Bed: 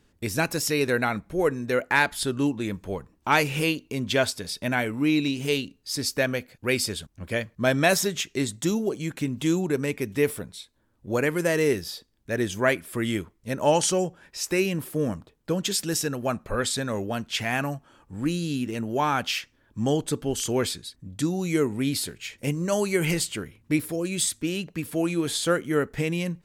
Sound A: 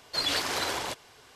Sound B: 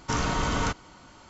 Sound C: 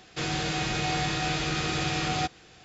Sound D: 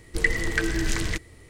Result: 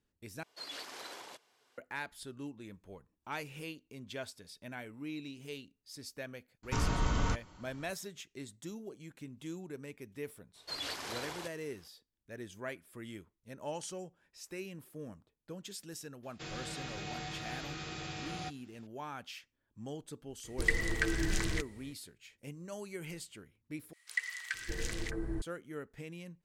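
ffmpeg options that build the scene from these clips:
-filter_complex "[1:a]asplit=2[a][b];[4:a]asplit=2[c][d];[0:a]volume=-19.5dB[e];[a]highpass=220[f];[2:a]lowshelf=f=140:g=10[g];[d]acrossover=split=1200[h][i];[h]adelay=610[j];[j][i]amix=inputs=2:normalize=0[k];[e]asplit=3[l][m][n];[l]atrim=end=0.434[o];[f]atrim=end=1.35,asetpts=PTS-STARTPTS,volume=-16.5dB[p];[m]atrim=start=1.776:end=23.934[q];[k]atrim=end=1.49,asetpts=PTS-STARTPTS,volume=-10.5dB[r];[n]atrim=start=25.416[s];[g]atrim=end=1.29,asetpts=PTS-STARTPTS,volume=-9dB,afade=t=in:d=0.004:c=hsin,afade=t=out:st=1.286:d=0.004:c=hsin,adelay=6630[t];[b]atrim=end=1.35,asetpts=PTS-STARTPTS,volume=-11.5dB,afade=t=in:d=0.02,afade=t=out:st=1.33:d=0.02,adelay=10540[u];[3:a]atrim=end=2.64,asetpts=PTS-STARTPTS,volume=-14dB,afade=t=in:d=0.004:c=hsin,afade=t=out:st=2.636:d=0.004:c=hsin,adelay=16230[v];[c]atrim=end=1.49,asetpts=PTS-STARTPTS,volume=-7dB,afade=t=in:d=0.004:c=hsin,afade=t=out:st=1.486:d=0.004:c=hsin,adelay=20440[w];[o][p]acrossfade=d=0.004:c1=hsin:c2=hsin[x];[x][q]acrossfade=d=0.004:c1=hsin:c2=hsin[y];[y][r]acrossfade=d=0.004:c1=hsin:c2=hsin[z];[z][s]acrossfade=d=0.004:c1=hsin:c2=hsin[aa];[aa][t][u][v][w]amix=inputs=5:normalize=0"

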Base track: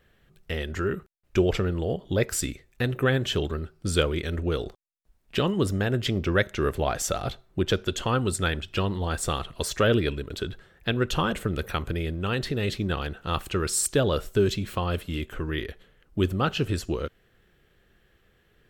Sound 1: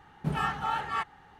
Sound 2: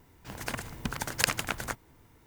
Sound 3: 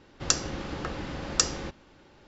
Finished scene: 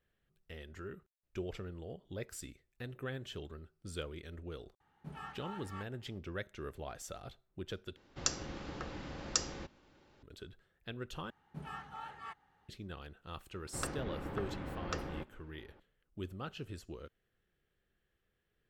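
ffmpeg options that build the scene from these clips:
-filter_complex "[1:a]asplit=2[a][b];[3:a]asplit=2[c][d];[0:a]volume=-18.5dB[e];[d]lowpass=2k[f];[e]asplit=3[g][h][i];[g]atrim=end=7.964[j];[c]atrim=end=2.27,asetpts=PTS-STARTPTS,volume=-9dB[k];[h]atrim=start=10.226:end=11.304[l];[b]atrim=end=1.39,asetpts=PTS-STARTPTS,volume=-16dB[m];[i]atrim=start=12.686[n];[a]atrim=end=1.39,asetpts=PTS-STARTPTS,volume=-17.5dB,afade=t=in:d=0.004:c=hsin,afade=t=out:st=1.386:d=0.004:c=hsin,adelay=4800[o];[f]atrim=end=2.27,asetpts=PTS-STARTPTS,volume=-6.5dB,afade=t=in:d=0.004:c=hsin,afade=t=out:st=2.266:d=0.004:c=hsin,adelay=13530[p];[j][k]acrossfade=d=0.004:c1=hsin:c2=hsin[q];[q][l]acrossfade=d=0.004:c1=hsin:c2=hsin[r];[r][m]acrossfade=d=0.004:c1=hsin:c2=hsin[s];[s][n]acrossfade=d=0.004:c1=hsin:c2=hsin[t];[t][o][p]amix=inputs=3:normalize=0"

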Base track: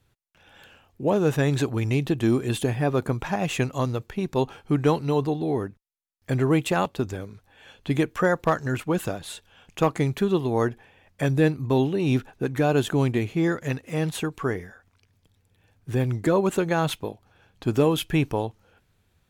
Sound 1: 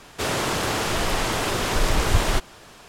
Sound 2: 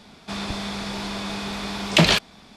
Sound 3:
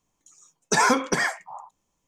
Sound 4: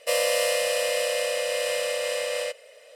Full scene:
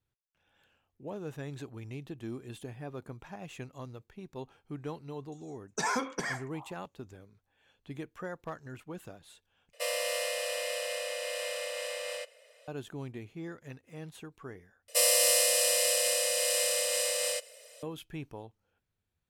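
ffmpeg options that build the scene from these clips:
-filter_complex "[4:a]asplit=2[a][b];[0:a]volume=-18.5dB[c];[a]equalizer=f=180:t=o:w=1.5:g=-15[d];[b]bass=f=250:g=0,treble=f=4k:g=14[e];[c]asplit=3[f][g][h];[f]atrim=end=9.734[i];[d]atrim=end=2.95,asetpts=PTS-STARTPTS,volume=-7.5dB[j];[g]atrim=start=12.676:end=14.884[k];[e]atrim=end=2.95,asetpts=PTS-STARTPTS,volume=-6.5dB[l];[h]atrim=start=17.826[m];[3:a]atrim=end=2.07,asetpts=PTS-STARTPTS,volume=-11.5dB,afade=t=in:d=0.004:c=hsin,afade=t=out:st=2.066:d=0.004:c=hsin,adelay=5060[n];[i][j]acrossfade=d=0.004:c1=hsin:c2=hsin[o];[o][k]acrossfade=d=0.004:c1=hsin:c2=hsin[p];[p][l]acrossfade=d=0.004:c1=hsin:c2=hsin[q];[q][m]acrossfade=d=0.004:c1=hsin:c2=hsin[r];[r][n]amix=inputs=2:normalize=0"

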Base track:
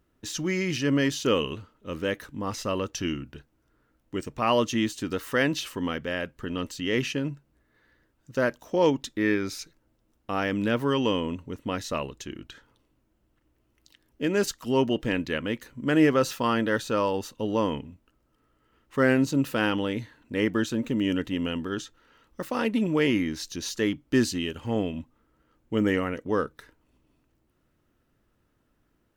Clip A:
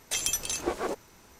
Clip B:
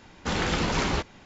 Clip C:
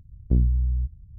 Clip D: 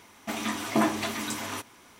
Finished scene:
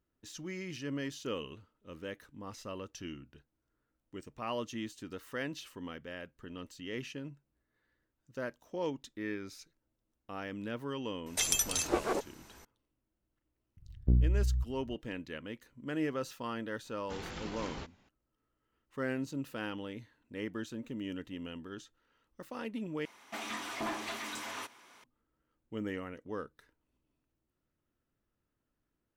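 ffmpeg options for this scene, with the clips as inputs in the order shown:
-filter_complex "[0:a]volume=-14dB[a];[4:a]asplit=2[b][c];[c]highpass=f=720:p=1,volume=20dB,asoftclip=type=tanh:threshold=-12dB[d];[b][d]amix=inputs=2:normalize=0,lowpass=f=4.4k:p=1,volume=-6dB[e];[a]asplit=2[f][g];[f]atrim=end=23.054[h];[e]atrim=end=1.99,asetpts=PTS-STARTPTS,volume=-16.5dB[i];[g]atrim=start=25.036[j];[1:a]atrim=end=1.39,asetpts=PTS-STARTPTS,volume=-1dB,afade=t=in:d=0.004:c=hsin,afade=t=out:st=1.386:d=0.004:c=hsin,adelay=11260[k];[3:a]atrim=end=1.18,asetpts=PTS-STARTPTS,volume=-6dB,afade=t=in:d=0.004:c=hsin,afade=t=out:st=1.176:d=0.004:c=hsin,adelay=13770[l];[2:a]atrim=end=1.25,asetpts=PTS-STARTPTS,volume=-17dB,afade=t=in:d=0.004:c=hsin,afade=t=out:st=1.246:d=0.004:c=hsin,adelay=742644S[m];[h][i]acrossfade=d=0.004:c1=hsin:c2=hsin[n];[n][j]acrossfade=d=0.004:c1=hsin:c2=hsin[o];[o][k][l][m]amix=inputs=4:normalize=0"

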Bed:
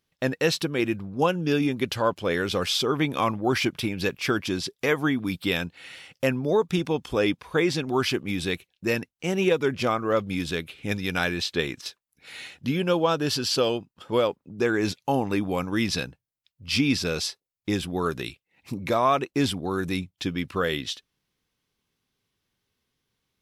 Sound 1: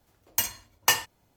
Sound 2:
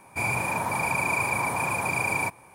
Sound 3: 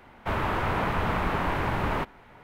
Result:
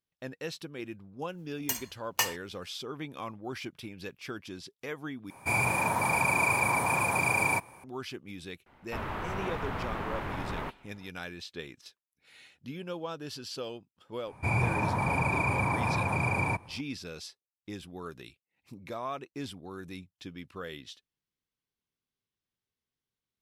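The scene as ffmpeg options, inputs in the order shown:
-filter_complex "[2:a]asplit=2[a][b];[0:a]volume=-15dB[c];[b]aemphasis=mode=reproduction:type=bsi[d];[c]asplit=2[e][f];[e]atrim=end=5.304[g];[a]atrim=end=2.54,asetpts=PTS-STARTPTS,volume=-0.5dB[h];[f]atrim=start=7.836[i];[1:a]atrim=end=1.36,asetpts=PTS-STARTPTS,volume=-6.5dB,afade=t=in:d=0.004:c=hsin,afade=t=out:st=1.356:d=0.004:c=hsin,adelay=1310[j];[3:a]atrim=end=2.43,asetpts=PTS-STARTPTS,volume=-8.5dB,afade=t=in:d=0.004:c=hsin,afade=t=out:st=2.426:d=0.004:c=hsin,adelay=381906S[k];[d]atrim=end=2.54,asetpts=PTS-STARTPTS,volume=-3dB,afade=t=in:d=0.004:c=hsin,afade=t=out:st=2.536:d=0.004:c=hsin,adelay=14270[l];[g][h]acrossfade=d=0.004:c1=hsin:c2=hsin[m];[m][i]acrossfade=d=0.004:c1=hsin:c2=hsin[n];[n][j][k][l]amix=inputs=4:normalize=0"

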